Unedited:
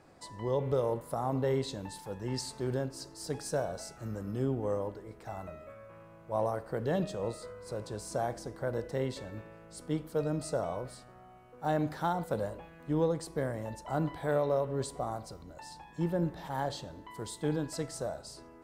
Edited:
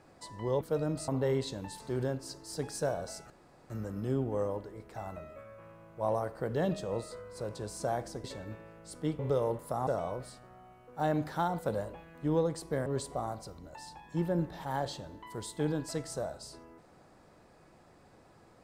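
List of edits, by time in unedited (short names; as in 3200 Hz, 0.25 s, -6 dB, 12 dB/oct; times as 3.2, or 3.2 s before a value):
0.61–1.29 swap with 10.05–10.52
2.01–2.51 cut
4.01 insert room tone 0.40 s
8.55–9.1 cut
13.51–14.7 cut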